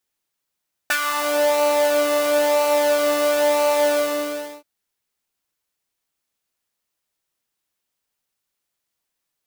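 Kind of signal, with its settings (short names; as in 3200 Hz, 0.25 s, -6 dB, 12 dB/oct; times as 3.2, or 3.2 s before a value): synth patch with pulse-width modulation D4, detune 16 cents, sub -16 dB, noise -8 dB, filter highpass, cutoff 410 Hz, Q 2.6, filter envelope 2 oct, filter decay 0.47 s, filter sustain 25%, attack 5.6 ms, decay 0.07 s, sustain -6.5 dB, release 0.74 s, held 2.99 s, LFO 1 Hz, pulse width 27%, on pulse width 10%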